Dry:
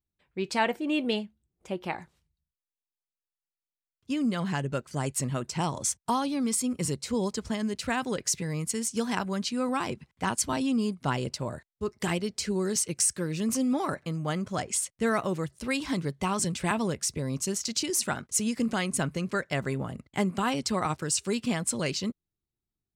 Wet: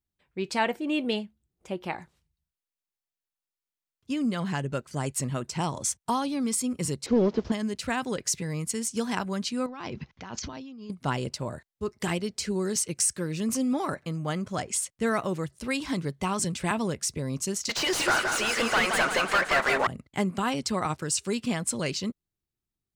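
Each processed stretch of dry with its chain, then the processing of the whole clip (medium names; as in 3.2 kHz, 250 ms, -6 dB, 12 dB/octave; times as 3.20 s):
7.06–7.52 s: one-bit delta coder 32 kbps, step -48 dBFS + peaking EQ 370 Hz +9.5 dB 1.9 oct
9.66–10.90 s: steep low-pass 6.5 kHz 72 dB/octave + compressor with a negative ratio -39 dBFS
17.69–19.87 s: high-pass 790 Hz + overdrive pedal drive 34 dB, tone 1.5 kHz, clips at -13 dBFS + modulated delay 172 ms, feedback 59%, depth 90 cents, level -5 dB
whole clip: none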